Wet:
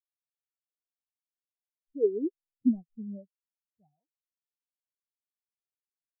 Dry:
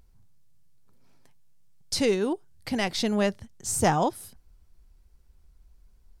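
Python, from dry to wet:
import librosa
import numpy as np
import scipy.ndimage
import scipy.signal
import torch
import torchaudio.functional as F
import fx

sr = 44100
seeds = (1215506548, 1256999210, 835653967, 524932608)

y = scipy.signal.medfilt(x, 25)
y = fx.doppler_pass(y, sr, speed_mps=9, closest_m=2.1, pass_at_s=2.49)
y = fx.spectral_expand(y, sr, expansion=4.0)
y = F.gain(torch.from_numpy(y), 6.5).numpy()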